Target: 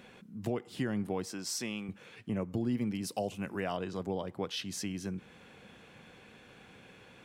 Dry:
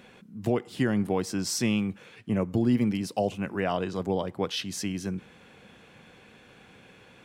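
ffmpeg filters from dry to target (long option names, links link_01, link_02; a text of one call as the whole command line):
ffmpeg -i in.wav -filter_complex "[0:a]acompressor=threshold=-38dB:ratio=1.5,asettb=1/sr,asplit=3[link_01][link_02][link_03];[link_01]atrim=end=1.284[link_04];[link_02]atrim=start=1.28:end=1.89,asetpts=PTS-STARTPTS,afade=type=in:duration=0.004:curve=qsin,afade=type=out:start_time=0.606:duration=0.004:curve=qsin,highpass=frequency=380:poles=1[link_05];[link_03]atrim=start=1.886[link_06];[link_04][link_05]acrossfade=duration=0.004:curve1=hsin:curve2=qsin[link_07];[link_07][link_06]acrossfade=duration=0.004:curve1=qsin:curve2=hsin,asettb=1/sr,asplit=3[link_08][link_09][link_10];[link_08]atrim=end=3.024[link_11];[link_09]atrim=start=3.02:end=3.77,asetpts=PTS-STARTPTS,afade=type=in:duration=0.004:curve=qsin,afade=type=out:start_time=0.746:duration=0.004:curve=qsin,highshelf=frequency=5700:gain=9[link_12];[link_10]atrim=start=3.766[link_13];[link_11][link_12]acrossfade=duration=0.004:curve1=hsin:curve2=qsin[link_14];[link_14][link_13]acrossfade=duration=0.004:curve1=qsin:curve2=hsin,volume=-2dB" out.wav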